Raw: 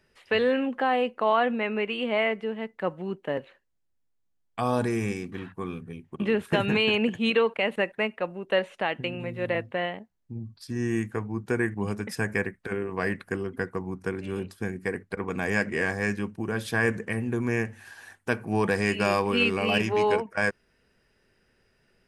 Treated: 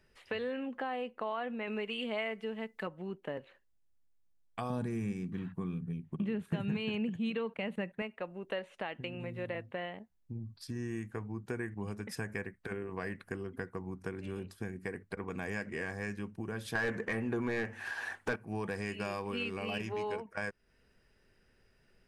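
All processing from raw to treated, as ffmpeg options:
ffmpeg -i in.wav -filter_complex "[0:a]asettb=1/sr,asplit=3[link_01][link_02][link_03];[link_01]atrim=end=1.674[link_04];[link_02]atrim=start=1.67:end=2.87,asetpts=PTS-STARTPTS,afade=type=in:duration=0.004:curve=qsin,afade=type=out:start_time=1.196:duration=0.004:curve=qsin,highshelf=frequency=3000:gain=11,aecho=1:1:4.6:0.53,atrim=end_sample=52920[link_05];[link_03]atrim=start=2.866[link_06];[link_04][link_05]acrossfade=duration=0.004:curve1=hsin:curve2=qsin[link_07];[link_07][link_06]acrossfade=duration=0.004:curve1=qsin:curve2=hsin,asettb=1/sr,asplit=3[link_08][link_09][link_10];[link_08]atrim=end=4.704[link_11];[link_09]atrim=start=4.7:end=8.02,asetpts=PTS-STARTPTS,afade=type=in:duration=0.004:curve=qsin,afade=type=out:start_time=3.316:duration=0.004:curve=qsin,equalizer=frequency=170:width_type=o:width=1:gain=13.5,bandreject=frequency=5200:width=15[link_12];[link_10]atrim=start=8.016[link_13];[link_11][link_12]acrossfade=duration=0.004:curve1=hsin:curve2=qsin[link_14];[link_14][link_13]acrossfade=duration=0.004:curve1=qsin:curve2=hsin,asettb=1/sr,asplit=3[link_15][link_16][link_17];[link_15]atrim=end=16.754[link_18];[link_16]atrim=start=16.75:end=18.36,asetpts=PTS-STARTPTS,afade=type=in:duration=0.004:curve=qsin,afade=type=out:start_time=1.606:duration=0.004:curve=qsin,acontrast=68,asplit=2[link_19][link_20];[link_20]highpass=frequency=720:poles=1,volume=19dB,asoftclip=type=tanh:threshold=-5.5dB[link_21];[link_19][link_21]amix=inputs=2:normalize=0,lowpass=frequency=1600:poles=1,volume=-6dB[link_22];[link_17]atrim=start=18.356[link_23];[link_18][link_22]acrossfade=duration=0.004:curve1=hsin:curve2=qsin[link_24];[link_24][link_23]acrossfade=duration=0.004:curve1=qsin:curve2=hsin,lowshelf=frequency=70:gain=8,acompressor=threshold=-35dB:ratio=2.5,volume=-3.5dB" out.wav

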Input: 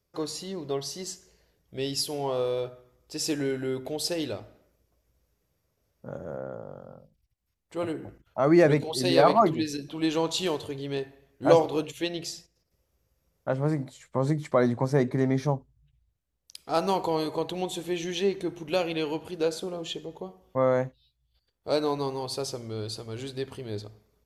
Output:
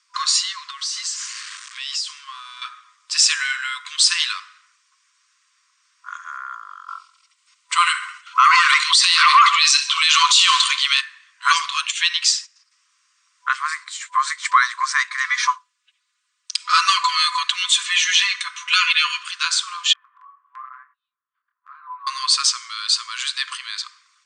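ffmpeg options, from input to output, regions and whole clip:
ffmpeg -i in.wav -filter_complex "[0:a]asettb=1/sr,asplit=3[link_01][link_02][link_03];[link_01]atrim=end=0.704[link_04];[link_02]atrim=start=0.7:end=2.62,asetpts=PTS-STARTPTS,afade=type=in:duration=0.004:curve=qsin,afade=type=out:start_time=1.916:duration=0.004:curve=qsin,aeval=exprs='val(0)+0.5*0.00631*sgn(val(0))':channel_layout=same,highpass=frequency=450:width=0.5412,highpass=frequency=450:width=1.3066,acompressor=threshold=-43dB:ratio=5:attack=3.2:release=140:knee=1:detection=peak[link_05];[link_03]atrim=start=2.616[link_06];[link_04][link_05]acrossfade=duration=0.004:curve1=hsin:curve2=qsin[link_07];[link_07][link_06]acrossfade=duration=0.004:curve1=qsin:curve2=hsin,asettb=1/sr,asplit=3[link_08][link_09][link_10];[link_08]atrim=end=6.884[link_11];[link_09]atrim=start=6.88:end=11.01,asetpts=PTS-STARTPTS,afade=type=in:duration=0.004:curve=qsin,afade=type=out:start_time=4.126:duration=0.004:curve=qsin,aeval=exprs='0.501*sin(PI/2*2*val(0)/0.501)':channel_layout=same,bandreject=frequency=1700:width=7.3,aecho=1:1:69|138|207|276|345:0.112|0.064|0.0365|0.0208|0.0118,atrim=end_sample=182133[link_12];[link_10]atrim=start=11.006[link_13];[link_11][link_12]acrossfade=duration=0.004:curve1=hsin:curve2=qsin[link_14];[link_14][link_13]acrossfade=duration=0.004:curve1=qsin:curve2=hsin,asettb=1/sr,asplit=3[link_15][link_16][link_17];[link_15]atrim=end=15.244[link_18];[link_16]atrim=start=15.24:end=19.23,asetpts=PTS-STARTPTS,afade=type=in:duration=0.004:curve=qsin,afade=type=out:start_time=3.986:duration=0.004:curve=qsin,highshelf=frequency=8100:gain=-3.5,aecho=1:1:4.1:0.92,atrim=end_sample=175959[link_19];[link_17]atrim=start=19.226[link_20];[link_18][link_19]acrossfade=duration=0.004:curve1=hsin:curve2=qsin[link_21];[link_21][link_20]acrossfade=duration=0.004:curve1=qsin:curve2=hsin,asettb=1/sr,asplit=3[link_22][link_23][link_24];[link_22]atrim=end=19.934[link_25];[link_23]atrim=start=19.93:end=22.07,asetpts=PTS-STARTPTS,afade=type=in:duration=0.004:curve=qsin,afade=type=out:start_time=2.136:duration=0.004:curve=qsin,lowpass=frequency=1300:width=0.5412,lowpass=frequency=1300:width=1.3066,flanger=delay=20:depth=6.4:speed=1,acompressor=threshold=-42dB:ratio=6:attack=3.2:release=140:knee=1:detection=peak[link_26];[link_24]atrim=start=22.066[link_27];[link_25][link_26]acrossfade=duration=0.004:curve1=hsin:curve2=qsin[link_28];[link_28][link_27]acrossfade=duration=0.004:curve1=qsin:curve2=hsin,afftfilt=real='re*between(b*sr/4096,1000,9200)':imag='im*between(b*sr/4096,1000,9200)':win_size=4096:overlap=0.75,alimiter=level_in=23dB:limit=-1dB:release=50:level=0:latency=1,volume=-3dB" out.wav

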